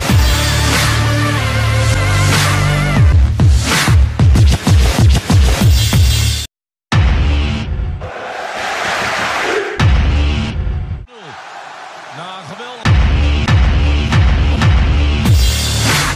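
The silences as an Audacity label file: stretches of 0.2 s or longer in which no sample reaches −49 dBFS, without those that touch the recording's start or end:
6.460000	6.920000	silence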